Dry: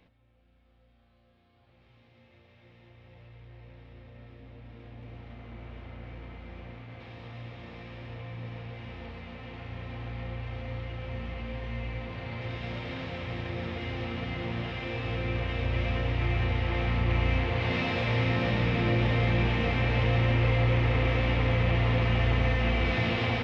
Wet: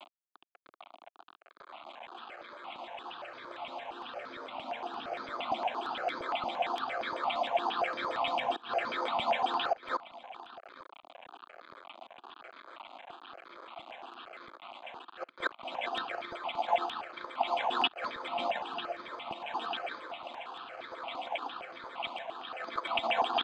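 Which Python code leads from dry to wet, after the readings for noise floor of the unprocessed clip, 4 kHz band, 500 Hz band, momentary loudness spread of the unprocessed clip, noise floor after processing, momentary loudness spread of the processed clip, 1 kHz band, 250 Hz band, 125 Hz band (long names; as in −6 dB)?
−64 dBFS, +0.5 dB, −3.0 dB, 19 LU, −62 dBFS, 19 LU, +5.0 dB, −14.5 dB, −37.0 dB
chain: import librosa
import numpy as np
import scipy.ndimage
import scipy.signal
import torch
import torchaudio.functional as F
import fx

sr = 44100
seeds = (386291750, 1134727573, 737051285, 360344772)

y = fx.octave_divider(x, sr, octaves=2, level_db=-3.0)
y = fx.peak_eq(y, sr, hz=1200.0, db=-3.5, octaves=0.25)
y = fx.notch(y, sr, hz=2000.0, q=23.0)
y = fx.over_compress(y, sr, threshold_db=-32.0, ratio=-0.5)
y = fx.gate_flip(y, sr, shuts_db=-23.0, range_db=-26)
y = fx.filter_lfo_lowpass(y, sr, shape='saw_down', hz=7.4, low_hz=660.0, high_hz=2800.0, q=7.4)
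y = fx.quant_dither(y, sr, seeds[0], bits=8, dither='none')
y = y + 10.0 ** (-20.5 / 20.0) * np.pad(y, (int(861 * sr / 1000.0), 0))[:len(y)]
y = np.repeat(y[::8], 8)[:len(y)]
y = fx.cabinet(y, sr, low_hz=340.0, low_slope=24, high_hz=3700.0, hz=(460.0, 700.0, 1200.0, 1900.0), db=(-8, 5, 4, -10))
y = fx.phaser_held(y, sr, hz=8.7, low_hz=440.0, high_hz=2800.0)
y = y * librosa.db_to_amplitude(8.0)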